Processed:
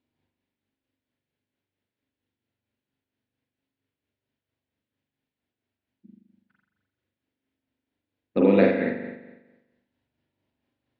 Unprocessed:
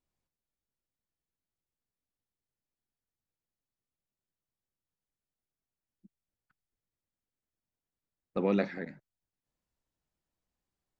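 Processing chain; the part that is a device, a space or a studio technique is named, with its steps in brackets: combo amplifier with spring reverb and tremolo (spring tank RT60 1.1 s, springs 41 ms, chirp 45 ms, DRR -2 dB; tremolo 4.4 Hz, depth 39%; cabinet simulation 100–4000 Hz, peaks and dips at 100 Hz +5 dB, 170 Hz -7 dB, 260 Hz +8 dB, 780 Hz -4 dB, 1.2 kHz -9 dB); trim +9 dB

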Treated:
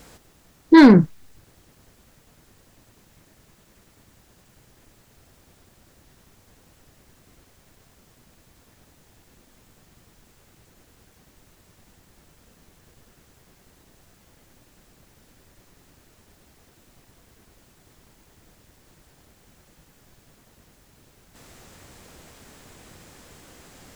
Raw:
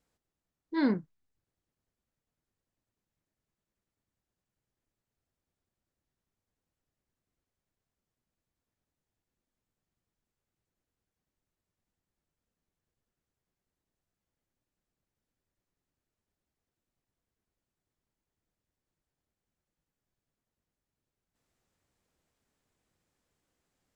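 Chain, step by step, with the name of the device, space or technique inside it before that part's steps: loud club master (compression 3:1, threshold -28 dBFS, peak gain reduction 5 dB; hard clipper -26.5 dBFS, distortion -19 dB; loudness maximiser +36 dB); trim -3.5 dB

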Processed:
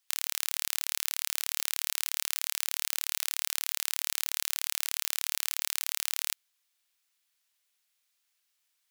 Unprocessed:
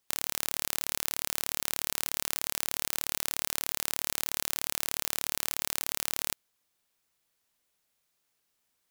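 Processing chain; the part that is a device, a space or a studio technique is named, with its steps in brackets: filter by subtraction (in parallel: low-pass 2.7 kHz 12 dB/octave + polarity flip)

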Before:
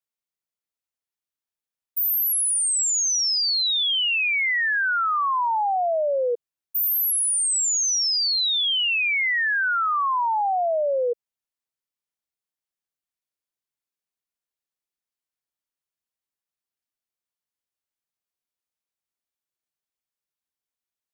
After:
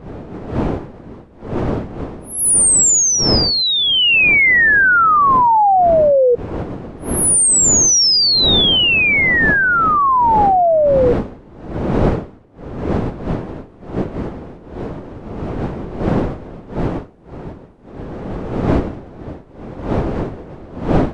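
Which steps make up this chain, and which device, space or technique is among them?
smartphone video outdoors (wind noise 390 Hz; level rider gain up to 13 dB; trim -1 dB; AAC 96 kbps 22.05 kHz)

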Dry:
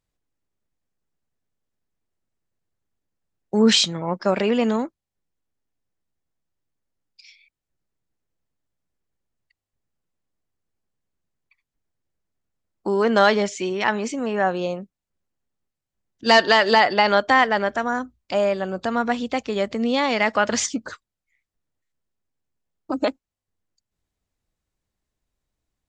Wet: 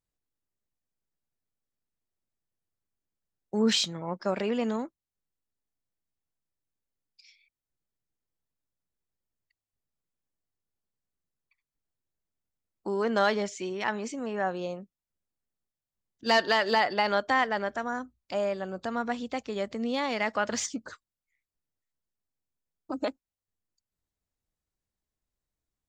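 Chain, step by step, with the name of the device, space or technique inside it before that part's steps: exciter from parts (in parallel at -12 dB: high-pass 2.5 kHz 24 dB/octave + saturation -28.5 dBFS, distortion -4 dB); on the sum: trim -8.5 dB

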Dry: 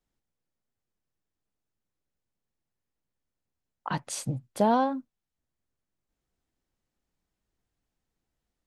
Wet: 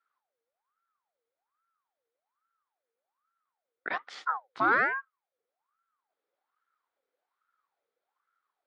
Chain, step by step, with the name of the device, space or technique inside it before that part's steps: voice changer toy (ring modulator with a swept carrier 910 Hz, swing 50%, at 1.2 Hz; cabinet simulation 480–3800 Hz, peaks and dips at 630 Hz -6 dB, 960 Hz -5 dB, 1.4 kHz +4 dB, 2.8 kHz -7 dB); trim +3.5 dB

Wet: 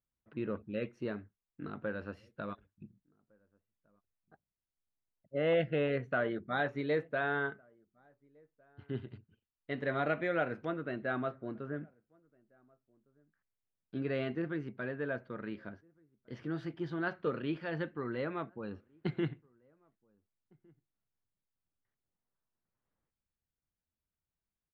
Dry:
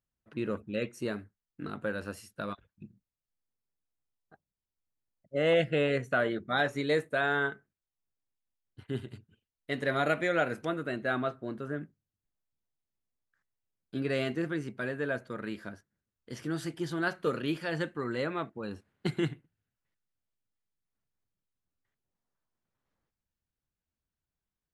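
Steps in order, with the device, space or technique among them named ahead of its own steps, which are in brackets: shout across a valley (distance through air 290 m; echo from a far wall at 250 m, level -30 dB); trim -3 dB

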